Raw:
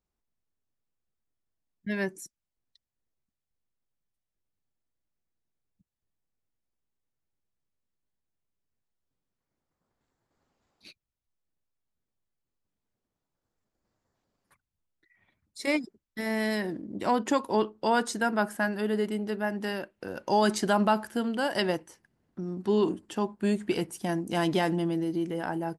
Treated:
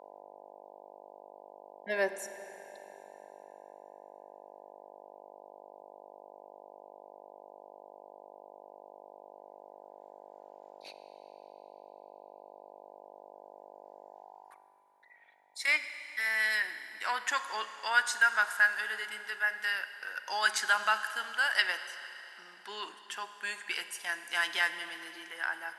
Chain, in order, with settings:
hum with harmonics 50 Hz, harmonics 20, −53 dBFS −2 dB per octave
high-pass filter sweep 580 Hz → 1,600 Hz, 0:14.04–0:14.85
four-comb reverb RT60 3.3 s, combs from 33 ms, DRR 10.5 dB

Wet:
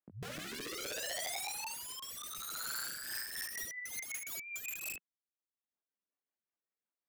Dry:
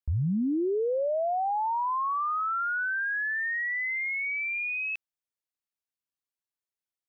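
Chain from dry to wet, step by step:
0:03.57–0:04.31: ceiling on every frequency bin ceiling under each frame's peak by 16 dB
Butterworth high-pass 180 Hz 36 dB per octave
reverb reduction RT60 1 s
Bessel low-pass filter 1,600 Hz, order 8
downward compressor 2 to 1, threshold −35 dBFS, peak gain reduction 5 dB
chorus effect 0.43 Hz, delay 19 ms, depth 7 ms
pitch vibrato 2.3 Hz 7.6 cents
wrap-around overflow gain 44 dB
rotating-speaker cabinet horn 0.6 Hz, later 5.5 Hz, at 0:02.58
level +10 dB

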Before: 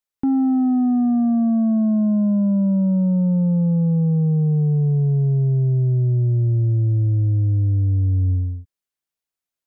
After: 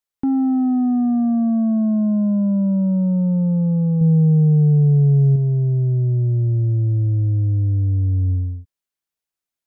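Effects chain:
0:04.01–0:05.36: tilt shelving filter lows +4.5 dB, about 920 Hz

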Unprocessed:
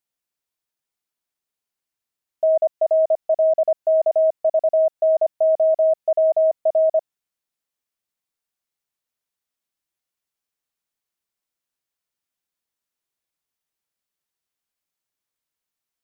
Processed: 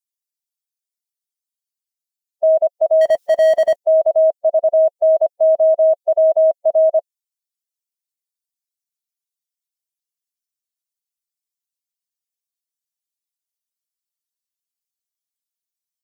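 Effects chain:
spectral dynamics exaggerated over time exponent 2
0:03.01–0:03.76: power curve on the samples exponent 0.7
level +4.5 dB

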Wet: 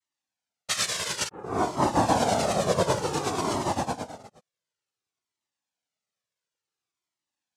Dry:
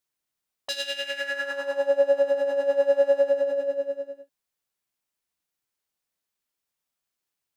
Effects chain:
delay that plays each chunk backwards 110 ms, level −5.5 dB
0:02.92–0:03.61: compressor whose output falls as the input rises −25 dBFS, ratio −1
hollow resonant body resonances 820/1,600/3,900 Hz, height 14 dB, ringing for 35 ms
0:01.28: tape start 0.94 s
cochlear-implant simulation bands 2
flanger whose copies keep moving one way falling 0.56 Hz

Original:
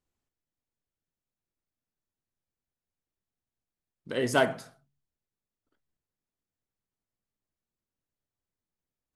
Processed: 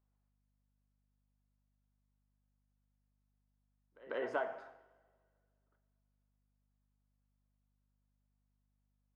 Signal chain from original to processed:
high-pass filter 670 Hz 12 dB per octave
echo ahead of the sound 145 ms −22 dB
downward compressor, threshold −34 dBFS, peak gain reduction 12.5 dB
coupled-rooms reverb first 0.9 s, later 2.3 s, from −17 dB, DRR 10 dB
mains hum 50 Hz, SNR 32 dB
low-pass filter 1,200 Hz 12 dB per octave
level +2.5 dB

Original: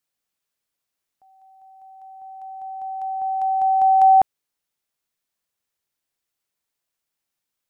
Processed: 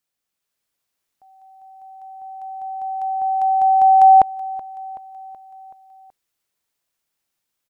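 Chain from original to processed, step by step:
automatic gain control gain up to 4 dB
on a send: repeating echo 377 ms, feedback 58%, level −19 dB

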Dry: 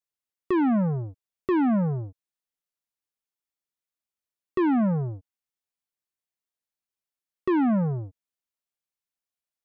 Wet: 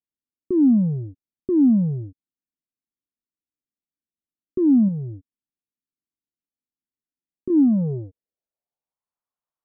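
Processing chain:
0:04.88–0:07.50: downward compressor 4 to 1, threshold −29 dBFS, peak gain reduction 6 dB
low-pass filter sweep 280 Hz → 1,100 Hz, 0:07.52–0:09.18

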